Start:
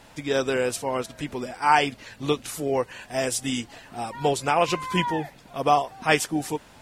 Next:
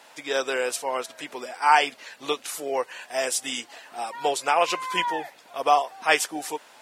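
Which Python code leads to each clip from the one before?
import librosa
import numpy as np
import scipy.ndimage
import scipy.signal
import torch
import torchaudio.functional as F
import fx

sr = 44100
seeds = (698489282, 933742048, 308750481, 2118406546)

y = scipy.signal.sosfilt(scipy.signal.butter(2, 530.0, 'highpass', fs=sr, output='sos'), x)
y = y * 10.0 ** (1.5 / 20.0)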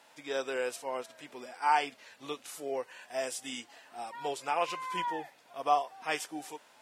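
y = fx.low_shelf(x, sr, hz=150.0, db=6.5)
y = fx.hpss(y, sr, part='percussive', gain_db=-8)
y = y * 10.0 ** (-6.5 / 20.0)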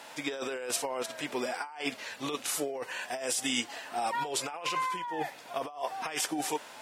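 y = fx.over_compress(x, sr, threshold_db=-41.0, ratio=-1.0)
y = y * 10.0 ** (6.5 / 20.0)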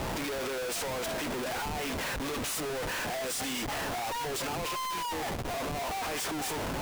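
y = fx.schmitt(x, sr, flips_db=-44.0)
y = fx.quant_companded(y, sr, bits=2)
y = y * 10.0 ** (-9.0 / 20.0)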